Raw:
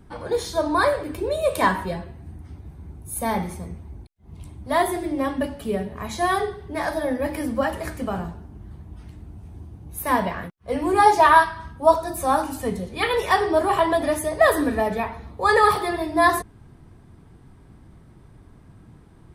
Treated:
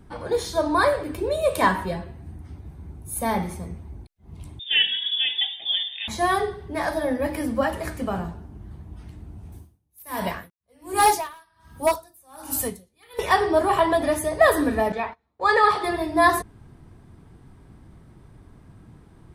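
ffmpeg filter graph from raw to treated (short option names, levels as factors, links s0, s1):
-filter_complex "[0:a]asettb=1/sr,asplit=3[s0][s1][s2];[s0]atrim=end=4.594[s3];[s1]atrim=start=4.59:end=6.08,asetpts=PTS-STARTPTS,afade=t=in:d=0.004:c=qsin,afade=t=out:st=1.486:d=0.004:c=qsin,lowpass=f=3100:t=q:w=0.5098,lowpass=f=3100:t=q:w=0.6013,lowpass=f=3100:t=q:w=0.9,lowpass=f=3100:t=q:w=2.563,afreqshift=-3700,asuperstop=centerf=1300:order=4:qfactor=2.6[s4];[s2]atrim=start=6.076[s5];[s3][s4]acrossfade=d=0.004:c1=hsin:c2=qsin[s6];[s6][s5]acrossfade=d=0.004:c1=qsin:c2=hsin,asettb=1/sr,asplit=3[s7][s8][s9];[s7]atrim=end=9.524[s10];[s8]atrim=start=9.52:end=13.19,asetpts=PTS-STARTPTS,afade=t=in:d=0.004:c=qsin,afade=t=out:st=3.666:d=0.004:c=qsin,aemphasis=mode=production:type=75fm,asoftclip=type=hard:threshold=0.266,aeval=exprs='val(0)*pow(10,-35*(0.5-0.5*cos(2*PI*1.3*n/s))/20)':c=same[s11];[s9]atrim=start=13.186[s12];[s10][s11]acrossfade=d=0.004:c1=hsin:c2=qsin[s13];[s13][s12]acrossfade=d=0.004:c1=qsin:c2=hsin,asettb=1/sr,asplit=3[s14][s15][s16];[s14]atrim=end=14.924[s17];[s15]atrim=start=14.92:end=15.84,asetpts=PTS-STARTPTS,afade=t=in:d=0.004:c=qsin,afade=t=out:st=0.916:d=0.004:c=qsin,lowpass=5900,lowshelf=f=260:g=-11,agate=range=0.0447:threshold=0.0158:ratio=16:release=100:detection=peak[s18];[s16]atrim=start=15.836[s19];[s17][s18]acrossfade=d=0.004:c1=hsin:c2=qsin[s20];[s20][s19]acrossfade=d=0.004:c1=qsin:c2=hsin"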